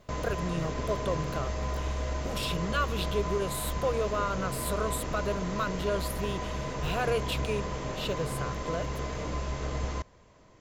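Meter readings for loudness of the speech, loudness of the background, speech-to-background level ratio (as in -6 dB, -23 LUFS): -33.5 LUFS, -34.5 LUFS, 1.0 dB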